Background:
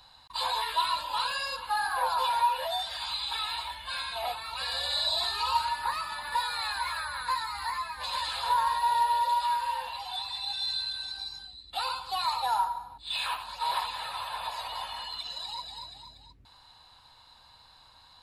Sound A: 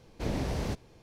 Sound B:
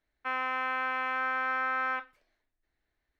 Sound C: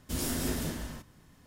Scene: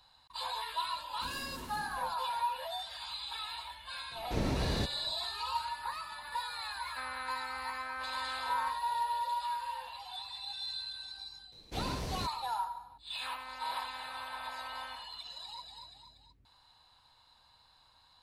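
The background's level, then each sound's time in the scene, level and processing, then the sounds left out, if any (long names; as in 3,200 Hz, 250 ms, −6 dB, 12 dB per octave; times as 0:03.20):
background −8 dB
0:01.12: mix in C −13.5 dB + soft clipping −25 dBFS
0:04.11: mix in A −0.5 dB
0:06.71: mix in B −10.5 dB
0:11.52: mix in A −6.5 dB + high-shelf EQ 2,900 Hz +7.5 dB
0:12.96: mix in B −15.5 dB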